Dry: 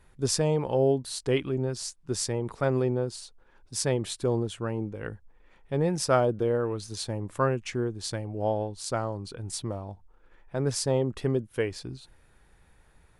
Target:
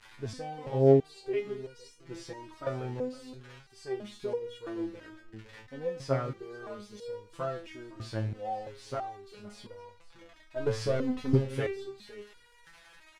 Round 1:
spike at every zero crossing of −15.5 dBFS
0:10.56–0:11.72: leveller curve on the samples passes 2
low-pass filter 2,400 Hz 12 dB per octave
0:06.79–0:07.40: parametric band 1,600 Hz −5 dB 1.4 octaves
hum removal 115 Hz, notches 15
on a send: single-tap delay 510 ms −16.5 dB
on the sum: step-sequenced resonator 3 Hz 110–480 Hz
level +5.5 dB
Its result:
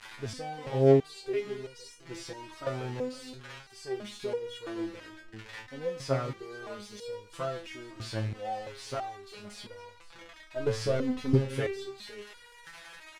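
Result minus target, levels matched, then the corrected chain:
spike at every zero crossing: distortion +8 dB
spike at every zero crossing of −23.5 dBFS
0:10.56–0:11.72: leveller curve on the samples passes 2
low-pass filter 2,400 Hz 12 dB per octave
0:06.79–0:07.40: parametric band 1,600 Hz −5 dB 1.4 octaves
hum removal 115 Hz, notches 15
on a send: single-tap delay 510 ms −16.5 dB
on the sum: step-sequenced resonator 3 Hz 110–480 Hz
level +5.5 dB

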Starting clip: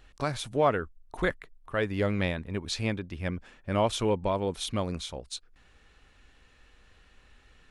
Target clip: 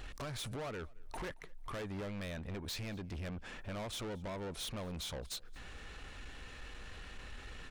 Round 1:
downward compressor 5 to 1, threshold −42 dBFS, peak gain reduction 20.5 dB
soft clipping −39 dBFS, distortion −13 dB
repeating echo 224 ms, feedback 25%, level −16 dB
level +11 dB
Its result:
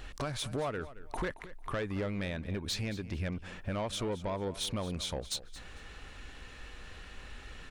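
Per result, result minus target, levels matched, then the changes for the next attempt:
echo-to-direct +9.5 dB; soft clipping: distortion −9 dB
change: repeating echo 224 ms, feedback 25%, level −25.5 dB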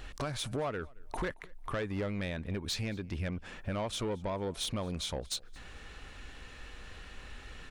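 soft clipping: distortion −9 dB
change: soft clipping −50 dBFS, distortion −4 dB

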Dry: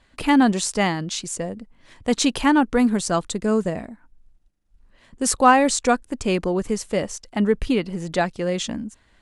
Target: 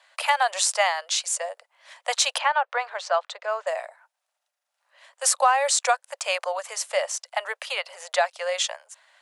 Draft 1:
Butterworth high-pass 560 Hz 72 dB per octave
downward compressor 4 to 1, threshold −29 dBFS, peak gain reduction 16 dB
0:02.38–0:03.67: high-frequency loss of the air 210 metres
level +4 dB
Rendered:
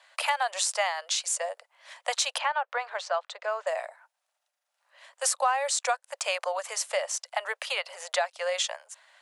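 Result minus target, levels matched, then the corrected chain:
downward compressor: peak gain reduction +6 dB
Butterworth high-pass 560 Hz 72 dB per octave
downward compressor 4 to 1, threshold −21 dBFS, peak gain reduction 10 dB
0:02.38–0:03.67: high-frequency loss of the air 210 metres
level +4 dB

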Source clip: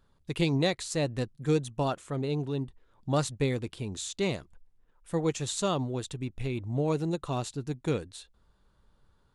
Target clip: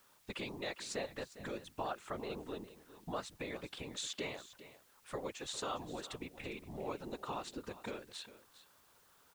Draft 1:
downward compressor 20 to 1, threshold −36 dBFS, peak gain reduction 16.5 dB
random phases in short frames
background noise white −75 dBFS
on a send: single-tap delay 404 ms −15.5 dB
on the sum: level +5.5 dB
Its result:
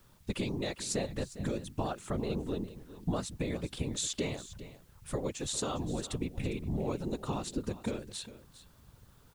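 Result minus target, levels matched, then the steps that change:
2,000 Hz band −6.5 dB
add after downward compressor: resonant band-pass 1,500 Hz, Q 0.58

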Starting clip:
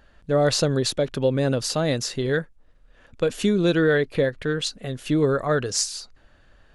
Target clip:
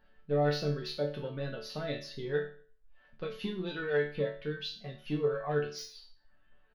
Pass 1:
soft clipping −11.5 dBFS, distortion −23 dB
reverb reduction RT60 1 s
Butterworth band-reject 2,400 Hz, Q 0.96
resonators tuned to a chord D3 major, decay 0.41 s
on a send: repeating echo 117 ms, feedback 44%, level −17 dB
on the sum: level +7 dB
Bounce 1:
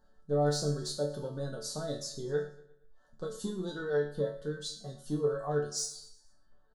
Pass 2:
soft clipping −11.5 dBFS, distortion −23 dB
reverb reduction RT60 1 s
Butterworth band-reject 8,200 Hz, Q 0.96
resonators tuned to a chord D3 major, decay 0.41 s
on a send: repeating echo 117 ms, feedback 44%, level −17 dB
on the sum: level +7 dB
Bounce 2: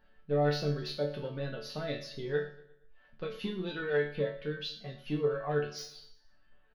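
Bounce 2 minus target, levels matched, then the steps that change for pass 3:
echo-to-direct +9.5 dB
change: repeating echo 117 ms, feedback 44%, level −26.5 dB

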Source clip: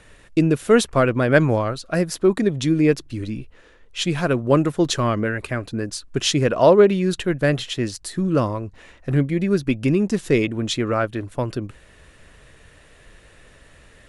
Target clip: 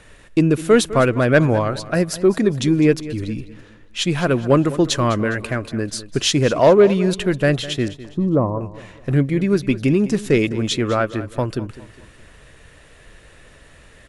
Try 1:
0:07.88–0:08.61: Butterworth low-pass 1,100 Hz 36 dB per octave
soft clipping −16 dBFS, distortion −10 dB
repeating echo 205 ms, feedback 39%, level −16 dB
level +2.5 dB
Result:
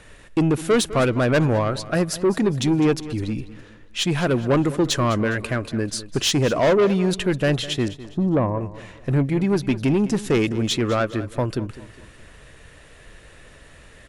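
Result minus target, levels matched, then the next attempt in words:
soft clipping: distortion +13 dB
0:07.88–0:08.61: Butterworth low-pass 1,100 Hz 36 dB per octave
soft clipping −5 dBFS, distortion −23 dB
repeating echo 205 ms, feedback 39%, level −16 dB
level +2.5 dB

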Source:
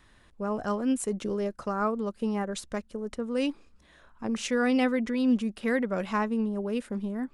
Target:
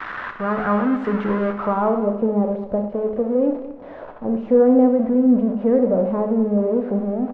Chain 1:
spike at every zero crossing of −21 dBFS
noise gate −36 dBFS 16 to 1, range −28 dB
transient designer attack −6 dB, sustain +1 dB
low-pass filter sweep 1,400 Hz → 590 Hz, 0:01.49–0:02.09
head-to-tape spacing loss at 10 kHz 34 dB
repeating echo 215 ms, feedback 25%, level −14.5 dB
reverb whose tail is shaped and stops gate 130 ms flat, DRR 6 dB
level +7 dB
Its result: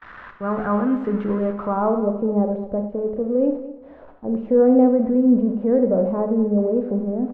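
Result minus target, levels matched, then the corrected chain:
spike at every zero crossing: distortion −10 dB
spike at every zero crossing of −10.5 dBFS
noise gate −36 dBFS 16 to 1, range −28 dB
transient designer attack −6 dB, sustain +1 dB
low-pass filter sweep 1,400 Hz → 590 Hz, 0:01.49–0:02.09
head-to-tape spacing loss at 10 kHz 34 dB
repeating echo 215 ms, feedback 25%, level −14.5 dB
reverb whose tail is shaped and stops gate 130 ms flat, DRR 6 dB
level +7 dB

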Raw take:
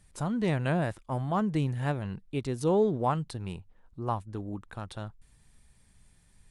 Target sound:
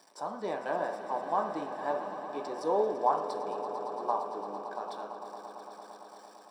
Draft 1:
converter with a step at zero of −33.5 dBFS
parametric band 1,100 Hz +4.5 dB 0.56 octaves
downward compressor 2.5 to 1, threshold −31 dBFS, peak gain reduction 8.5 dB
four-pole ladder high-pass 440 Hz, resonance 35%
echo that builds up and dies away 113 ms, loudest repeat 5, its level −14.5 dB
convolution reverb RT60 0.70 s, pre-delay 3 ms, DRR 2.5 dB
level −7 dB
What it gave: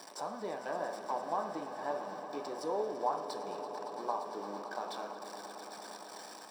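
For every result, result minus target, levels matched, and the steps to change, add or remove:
downward compressor: peak gain reduction +8.5 dB; converter with a step at zero: distortion +10 dB
remove: downward compressor 2.5 to 1, threshold −31 dBFS, peak gain reduction 8.5 dB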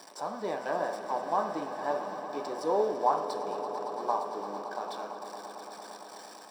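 converter with a step at zero: distortion +10 dB
change: converter with a step at zero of −44.5 dBFS

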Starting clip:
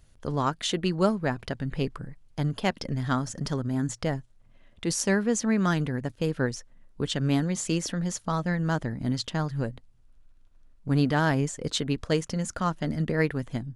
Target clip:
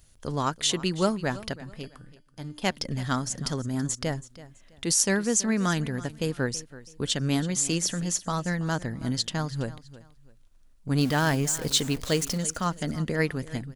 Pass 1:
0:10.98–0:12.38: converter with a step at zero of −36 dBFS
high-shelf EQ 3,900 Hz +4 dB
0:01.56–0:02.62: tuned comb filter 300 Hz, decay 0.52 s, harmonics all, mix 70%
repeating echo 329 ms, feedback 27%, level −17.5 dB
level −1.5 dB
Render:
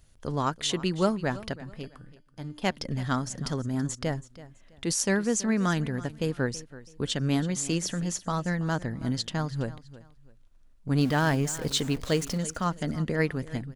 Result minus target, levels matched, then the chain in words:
8,000 Hz band −4.5 dB
0:10.98–0:12.38: converter with a step at zero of −36 dBFS
high-shelf EQ 3,900 Hz +11.5 dB
0:01.56–0:02.62: tuned comb filter 300 Hz, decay 0.52 s, harmonics all, mix 70%
repeating echo 329 ms, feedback 27%, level −17.5 dB
level −1.5 dB

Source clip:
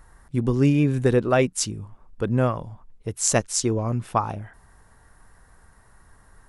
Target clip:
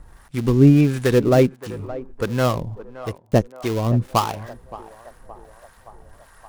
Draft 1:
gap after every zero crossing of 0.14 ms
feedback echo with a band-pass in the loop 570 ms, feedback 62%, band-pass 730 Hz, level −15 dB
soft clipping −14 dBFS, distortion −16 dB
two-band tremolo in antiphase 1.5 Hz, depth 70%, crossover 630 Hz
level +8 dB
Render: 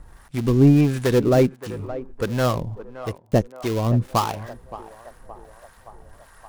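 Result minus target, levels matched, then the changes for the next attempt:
soft clipping: distortion +11 dB
change: soft clipping −7 dBFS, distortion −26 dB

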